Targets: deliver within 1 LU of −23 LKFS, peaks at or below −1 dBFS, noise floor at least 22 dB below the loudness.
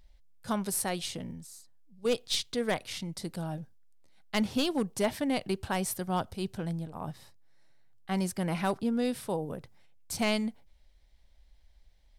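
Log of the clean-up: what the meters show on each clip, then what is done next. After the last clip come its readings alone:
share of clipped samples 0.2%; peaks flattened at −21.0 dBFS; integrated loudness −32.5 LKFS; sample peak −21.0 dBFS; target loudness −23.0 LKFS
→ clipped peaks rebuilt −21 dBFS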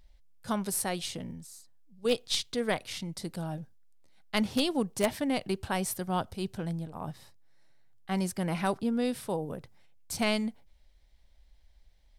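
share of clipped samples 0.0%; integrated loudness −32.0 LKFS; sample peak −12.0 dBFS; target loudness −23.0 LKFS
→ level +9 dB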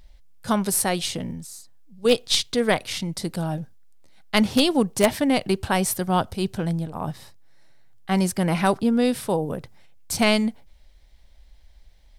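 integrated loudness −23.0 LKFS; sample peak −3.0 dBFS; background noise floor −52 dBFS

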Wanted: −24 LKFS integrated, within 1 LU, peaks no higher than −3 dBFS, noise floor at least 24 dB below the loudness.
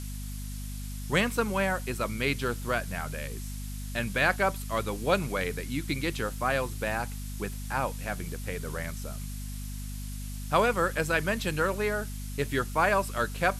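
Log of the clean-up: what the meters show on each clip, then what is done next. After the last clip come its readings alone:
mains hum 50 Hz; hum harmonics up to 250 Hz; level of the hum −35 dBFS; background noise floor −37 dBFS; target noise floor −54 dBFS; integrated loudness −30.0 LKFS; sample peak −10.5 dBFS; target loudness −24.0 LKFS
→ mains-hum notches 50/100/150/200/250 Hz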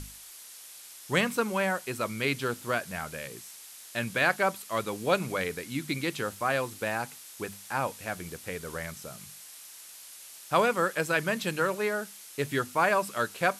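mains hum none found; background noise floor −48 dBFS; target noise floor −54 dBFS
→ broadband denoise 6 dB, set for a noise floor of −48 dBFS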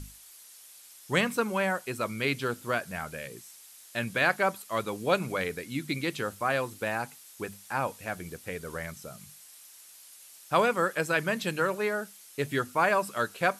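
background noise floor −52 dBFS; target noise floor −54 dBFS
→ broadband denoise 6 dB, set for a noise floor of −52 dBFS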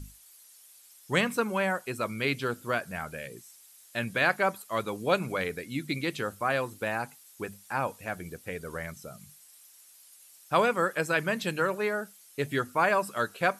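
background noise floor −56 dBFS; integrated loudness −30.0 LKFS; sample peak −11.0 dBFS; target loudness −24.0 LKFS
→ level +6 dB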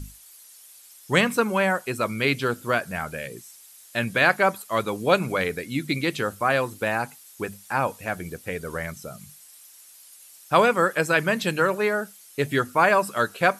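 integrated loudness −24.0 LKFS; sample peak −5.0 dBFS; background noise floor −50 dBFS

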